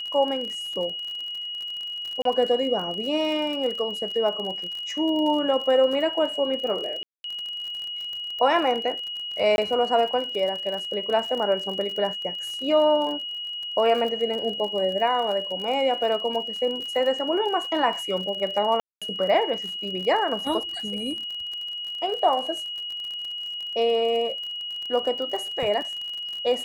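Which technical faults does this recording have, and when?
surface crackle 43 per second −31 dBFS
whistle 2,900 Hz −30 dBFS
0:02.22–0:02.25: drop-out 33 ms
0:07.03–0:07.24: drop-out 212 ms
0:09.56–0:09.58: drop-out 21 ms
0:18.80–0:19.02: drop-out 216 ms

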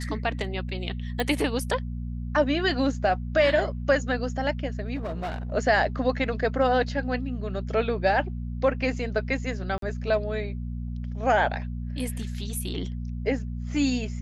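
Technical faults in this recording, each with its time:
mains hum 60 Hz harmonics 4 −32 dBFS
0:01.20: click
0:04.95–0:05.52: clipping −27.5 dBFS
0:09.78–0:09.82: drop-out 43 ms

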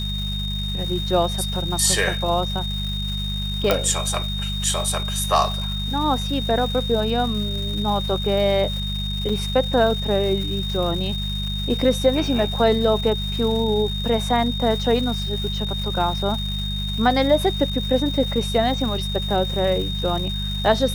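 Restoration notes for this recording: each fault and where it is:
surface crackle 600 per second −31 dBFS
mains hum 50 Hz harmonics 4 −27 dBFS
whistle 3,700 Hz −28 dBFS
0:03.71: click −3 dBFS
0:09.29: drop-out 4.6 ms

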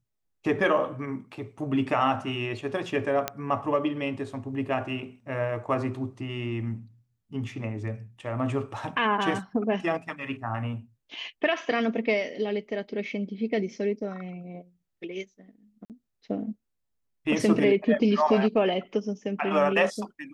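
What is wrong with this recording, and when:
0:03.28: click −10 dBFS
0:15.85–0:15.90: drop-out 48 ms

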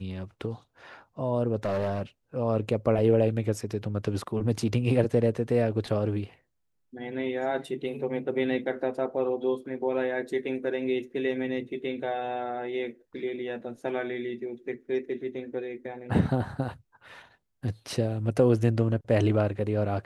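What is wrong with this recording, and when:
0:01.63–0:02.03: clipping −24 dBFS

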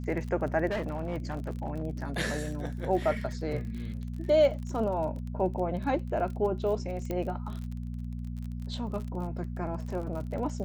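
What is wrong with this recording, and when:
surface crackle 34 per second −36 dBFS
mains hum 60 Hz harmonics 4 −36 dBFS
0:00.68–0:01.83: clipping −27.5 dBFS
0:07.11: click −20 dBFS

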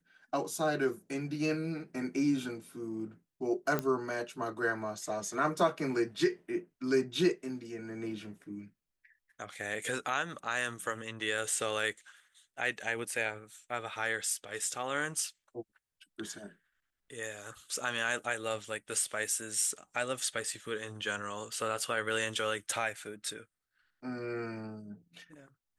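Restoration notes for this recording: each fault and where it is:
0:03.79: click −17 dBFS

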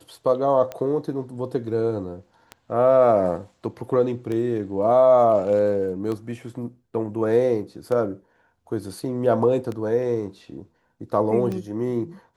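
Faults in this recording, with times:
scratch tick 33 1/3 rpm −18 dBFS

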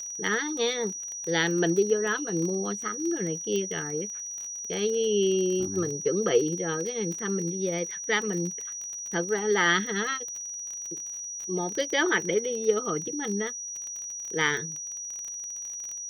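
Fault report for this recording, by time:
surface crackle 26 per second −32 dBFS
whistle 5,800 Hz −34 dBFS
0:03.56: click −19 dBFS

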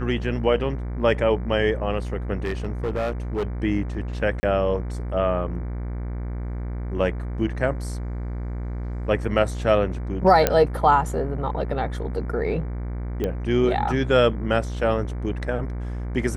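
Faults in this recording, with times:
mains buzz 60 Hz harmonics 39 −29 dBFS
0:02.40–0:03.45: clipping −21 dBFS
0:04.40–0:04.43: drop-out 30 ms
0:10.47: click −3 dBFS
0:13.24: click −14 dBFS

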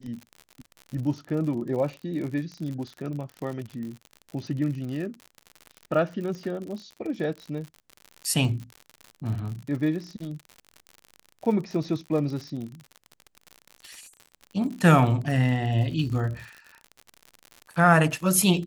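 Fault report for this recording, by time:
surface crackle 67 per second −33 dBFS

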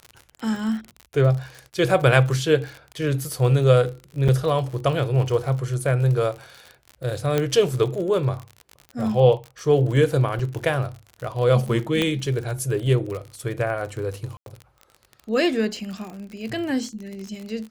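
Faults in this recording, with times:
surface crackle 50 per second −30 dBFS
0:04.28–0:04.29: drop-out 6.2 ms
0:07.38: click −8 dBFS
0:10.39: drop-out 3.9 ms
0:12.02: click −9 dBFS
0:14.37–0:14.46: drop-out 92 ms

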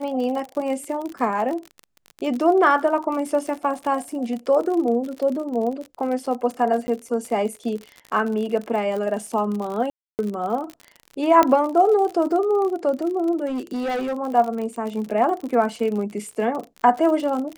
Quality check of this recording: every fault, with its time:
surface crackle 49 per second −28 dBFS
0:06.87–0:06.88: drop-out 10 ms
0:09.90–0:10.19: drop-out 289 ms
0:11.43: click −5 dBFS
0:13.46–0:14.14: clipping −22.5 dBFS

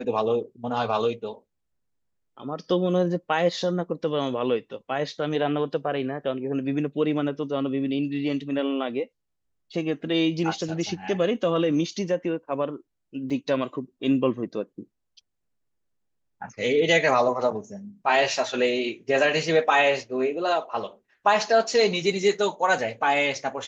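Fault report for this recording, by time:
0:13.30: drop-out 3.8 ms

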